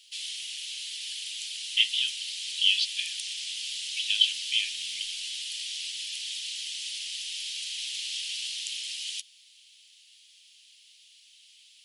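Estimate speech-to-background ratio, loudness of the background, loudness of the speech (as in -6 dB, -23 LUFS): 7.0 dB, -33.0 LUFS, -26.0 LUFS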